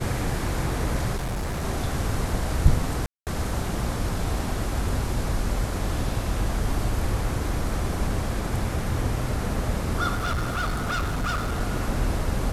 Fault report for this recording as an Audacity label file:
1.160000	1.630000	clipped -25 dBFS
3.060000	3.270000	gap 0.208 s
10.140000	11.600000	clipped -22.5 dBFS

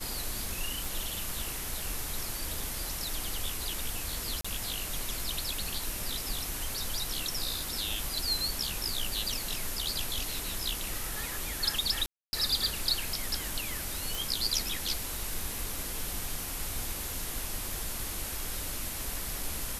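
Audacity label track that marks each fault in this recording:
0.850000	0.850000	pop
4.410000	4.450000	gap 35 ms
12.060000	12.330000	gap 0.27 s
14.150000	14.150000	pop

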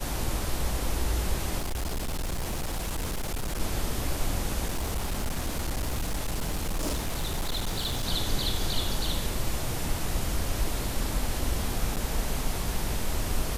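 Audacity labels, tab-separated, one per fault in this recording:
1.580000	3.610000	clipped -27 dBFS
4.650000	8.050000	clipped -25 dBFS
11.960000	11.970000	gap 8.6 ms

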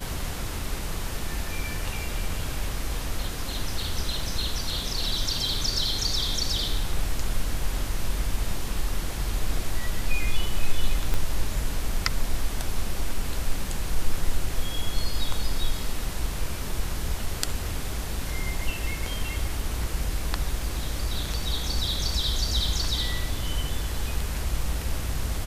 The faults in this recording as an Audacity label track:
11.140000	11.140000	pop -13 dBFS

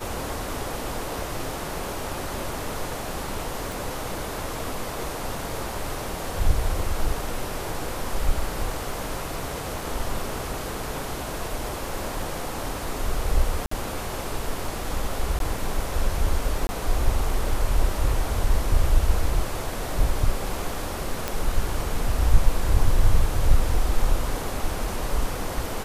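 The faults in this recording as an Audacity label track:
3.720000	3.720000	pop
13.660000	13.710000	gap 54 ms
15.390000	15.400000	gap 12 ms
16.670000	16.690000	gap 20 ms
21.280000	21.280000	pop

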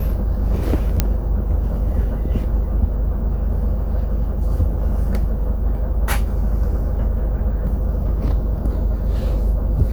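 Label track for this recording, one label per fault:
1.000000	1.000000	pop -2 dBFS

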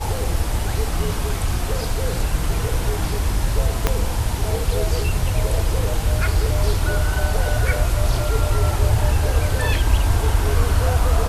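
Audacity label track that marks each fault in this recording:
3.870000	3.870000	pop -2 dBFS

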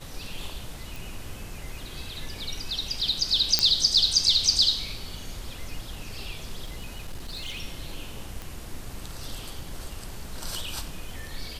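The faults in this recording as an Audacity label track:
0.960000	0.960000	pop
3.590000	3.590000	pop -3 dBFS
6.650000	7.620000	clipped -30.5 dBFS
8.420000	8.420000	pop

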